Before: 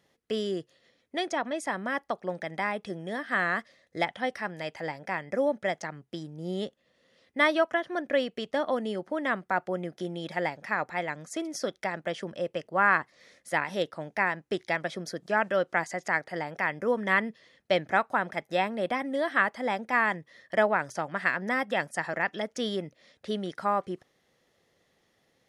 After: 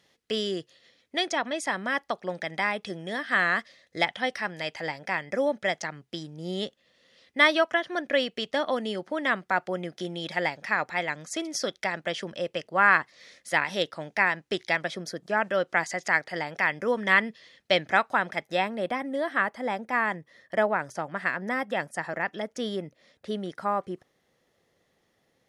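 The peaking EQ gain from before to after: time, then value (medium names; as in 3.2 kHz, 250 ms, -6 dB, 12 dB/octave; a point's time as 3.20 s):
peaking EQ 4 kHz 2.4 oct
14.68 s +8 dB
15.29 s -0.5 dB
15.90 s +8 dB
18.18 s +8 dB
19.06 s -2.5 dB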